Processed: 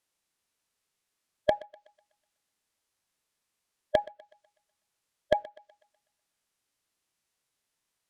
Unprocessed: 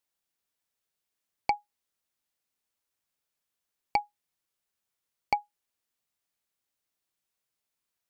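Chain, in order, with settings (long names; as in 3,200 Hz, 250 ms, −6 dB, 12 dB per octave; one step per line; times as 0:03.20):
treble cut that deepens with the level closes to 2,100 Hz, closed at −31 dBFS
formants moved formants −5 semitones
feedback echo with a high-pass in the loop 124 ms, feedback 48%, high-pass 420 Hz, level −20 dB
level +4 dB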